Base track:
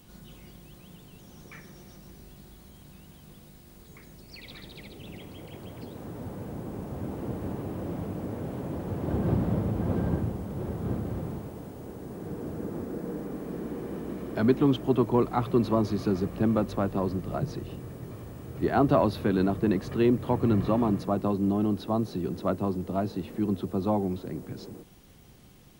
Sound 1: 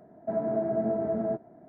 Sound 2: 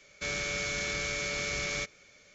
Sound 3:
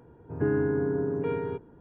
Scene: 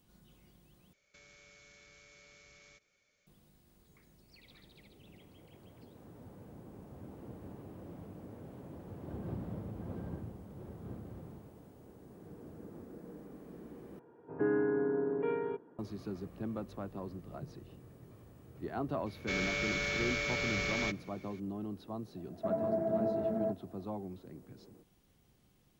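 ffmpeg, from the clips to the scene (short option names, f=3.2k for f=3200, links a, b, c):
-filter_complex "[2:a]asplit=2[a][b];[0:a]volume=-14.5dB[c];[a]acompressor=threshold=-39dB:ratio=6:attack=3.2:release=140:knee=1:detection=peak[d];[3:a]highpass=260,lowpass=3k[e];[b]lowpass=4.2k[f];[c]asplit=3[g][h][i];[g]atrim=end=0.934[j];[d]atrim=end=2.34,asetpts=PTS-STARTPTS,volume=-17.5dB[k];[h]atrim=start=3.266:end=13.994[l];[e]atrim=end=1.8,asetpts=PTS-STARTPTS,volume=-3dB[m];[i]atrim=start=15.786[n];[f]atrim=end=2.34,asetpts=PTS-STARTPTS,volume=-0.5dB,afade=t=in:d=0.004:c=hsin,afade=t=out:st=2.336:d=0.004:c=hsin,adelay=19060[o];[1:a]atrim=end=1.68,asetpts=PTS-STARTPTS,volume=-4.5dB,afade=t=in:d=0.004:c=hsin,afade=t=out:st=1.676:d=0.004:c=hsin,adelay=22160[p];[j][k]acrossfade=d=0.004:c1=hsin:c2=hsin[q];[q][l]acrossfade=d=0.004:c1=hsin:c2=hsin[r];[r][m]acrossfade=d=0.004:c1=hsin:c2=hsin[s];[s][n]acrossfade=d=0.004:c1=hsin:c2=hsin[t];[t][o][p]amix=inputs=3:normalize=0"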